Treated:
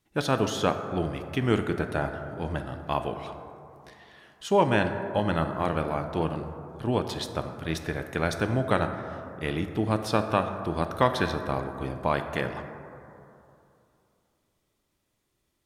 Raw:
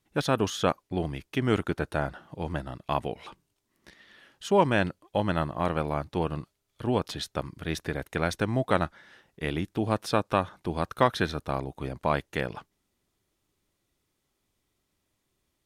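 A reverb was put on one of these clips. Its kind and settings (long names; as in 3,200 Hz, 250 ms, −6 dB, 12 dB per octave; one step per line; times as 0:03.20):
dense smooth reverb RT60 2.8 s, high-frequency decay 0.3×, DRR 6.5 dB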